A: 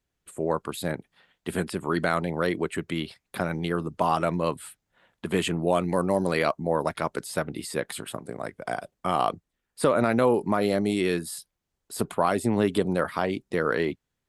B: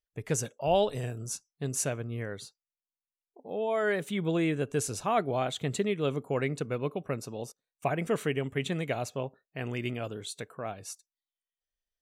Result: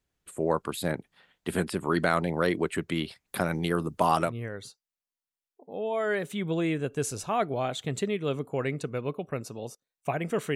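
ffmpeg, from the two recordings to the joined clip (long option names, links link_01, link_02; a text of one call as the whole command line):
ffmpeg -i cue0.wav -i cue1.wav -filter_complex "[0:a]asettb=1/sr,asplit=3[link_01][link_02][link_03];[link_01]atrim=end=3.284[link_04];[link_02]atrim=start=3.28:end=4.33,asetpts=PTS-STARTPTS,afade=type=in:duration=0.004:curve=qsin,afade=type=out:start_time=1.046:duration=0.004:curve=qsin,highshelf=frequency=8200:gain=9.5[link_05];[link_03]atrim=start=4.326[link_06];[link_04][link_05]acrossfade=duration=0.004:curve1=hsin:curve2=qsin[link_07];[link_07][link_06]acrossfade=duration=0.004:curve1=qsin:curve2=hsin,apad=whole_dur=10.55,atrim=end=10.55,atrim=end=4.33,asetpts=PTS-STARTPTS[link_08];[1:a]atrim=start=2:end=8.32,asetpts=PTS-STARTPTS[link_09];[link_08][link_09]acrossfade=duration=0.1:curve1=tri:curve2=tri" out.wav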